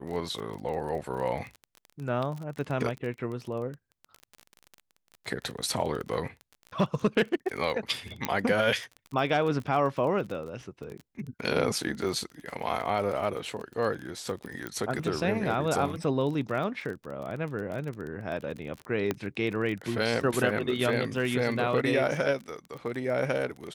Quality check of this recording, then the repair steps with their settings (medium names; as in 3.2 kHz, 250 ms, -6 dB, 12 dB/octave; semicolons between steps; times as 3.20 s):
crackle 25 per s -34 dBFS
8.25 s: pop -11 dBFS
14.67 s: pop -20 dBFS
19.11 s: pop -14 dBFS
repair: de-click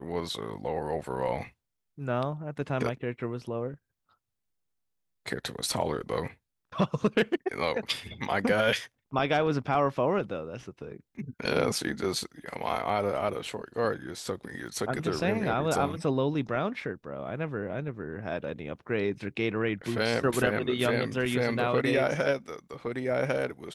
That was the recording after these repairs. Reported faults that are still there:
8.25 s: pop
14.67 s: pop